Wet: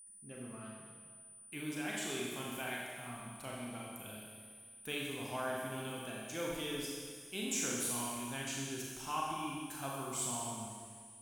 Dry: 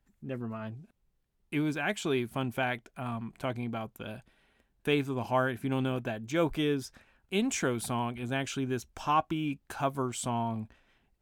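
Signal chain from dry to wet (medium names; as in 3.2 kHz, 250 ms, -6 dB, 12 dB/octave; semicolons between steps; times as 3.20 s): pre-emphasis filter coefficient 0.8; Schroeder reverb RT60 1.8 s, combs from 29 ms, DRR -3.5 dB; whistle 9.4 kHz -52 dBFS; trim -1.5 dB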